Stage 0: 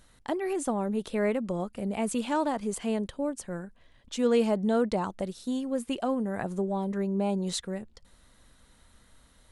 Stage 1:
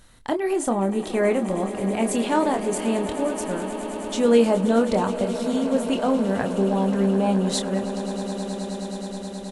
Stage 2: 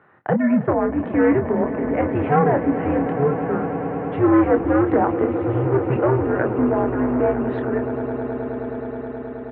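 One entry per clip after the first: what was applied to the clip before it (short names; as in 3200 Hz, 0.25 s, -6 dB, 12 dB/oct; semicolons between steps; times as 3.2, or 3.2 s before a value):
doubler 26 ms -7 dB; swelling echo 0.106 s, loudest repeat 8, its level -16.5 dB; gain +5.5 dB
overloaded stage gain 17 dB; mistuned SSB -140 Hz 220–2100 Hz; HPF 150 Hz 12 dB/oct; gain +7 dB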